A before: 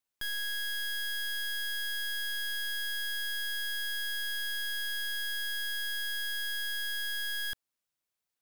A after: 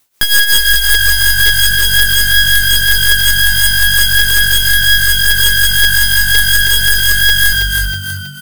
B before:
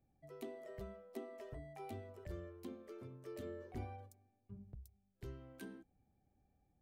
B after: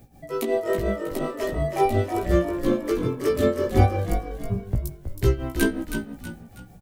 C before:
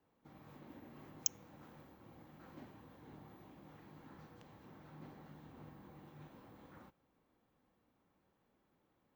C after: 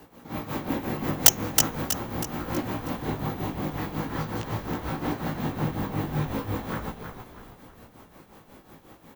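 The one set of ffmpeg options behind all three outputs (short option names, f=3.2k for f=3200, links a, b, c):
-filter_complex "[0:a]highshelf=f=6.5k:g=5.5,asoftclip=type=tanh:threshold=-18dB,tremolo=f=5.5:d=0.78,flanger=delay=17:depth=2:speed=0.41,aeval=exprs='(mod(37.6*val(0)+1,2)-1)/37.6':c=same,asplit=6[a][b][c][d][e][f];[b]adelay=321,afreqshift=-48,volume=-7.5dB[g];[c]adelay=642,afreqshift=-96,volume=-15dB[h];[d]adelay=963,afreqshift=-144,volume=-22.6dB[i];[e]adelay=1284,afreqshift=-192,volume=-30.1dB[j];[f]adelay=1605,afreqshift=-240,volume=-37.6dB[k];[a][g][h][i][j][k]amix=inputs=6:normalize=0,alimiter=level_in=33dB:limit=-1dB:release=50:level=0:latency=1,volume=-1dB"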